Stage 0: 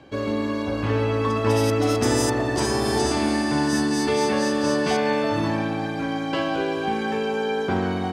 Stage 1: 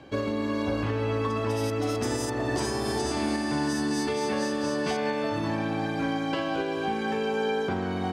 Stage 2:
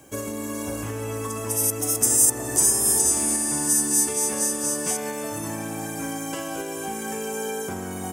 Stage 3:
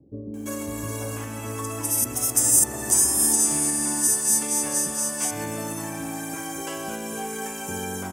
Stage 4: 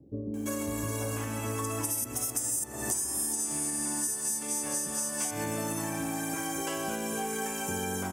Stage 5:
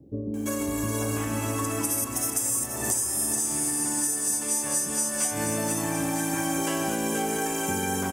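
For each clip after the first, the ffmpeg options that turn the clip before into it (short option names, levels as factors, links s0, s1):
-af "alimiter=limit=0.119:level=0:latency=1:release=494"
-af "aexciter=amount=15.9:drive=9:freq=6700,volume=0.708"
-filter_complex "[0:a]acrossover=split=420[s0][s1];[s1]adelay=340[s2];[s0][s2]amix=inputs=2:normalize=0"
-af "acompressor=threshold=0.0398:ratio=10"
-af "aecho=1:1:480|960|1440|1920|2400|2880|3360:0.422|0.232|0.128|0.0702|0.0386|0.0212|0.0117,volume=1.58"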